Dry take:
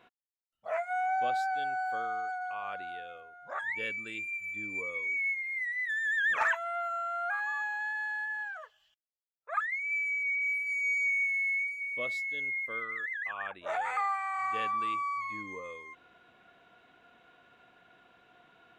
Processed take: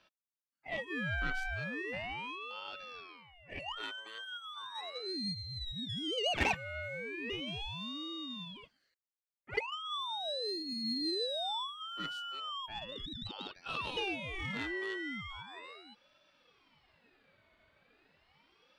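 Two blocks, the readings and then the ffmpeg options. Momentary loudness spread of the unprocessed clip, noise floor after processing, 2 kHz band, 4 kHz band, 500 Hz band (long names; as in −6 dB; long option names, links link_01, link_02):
12 LU, below −85 dBFS, −10.0 dB, +14.0 dB, −0.5 dB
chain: -af "aeval=exprs='0.106*(cos(1*acos(clip(val(0)/0.106,-1,1)))-cos(1*PI/2))+0.0188*(cos(3*acos(clip(val(0)/0.106,-1,1)))-cos(3*PI/2))+0.00119*(cos(4*acos(clip(val(0)/0.106,-1,1)))-cos(4*PI/2))':channel_layout=same,aeval=exprs='val(0)*sin(2*PI*1400*n/s+1400*0.45/0.37*sin(2*PI*0.37*n/s))':channel_layout=same,volume=2dB"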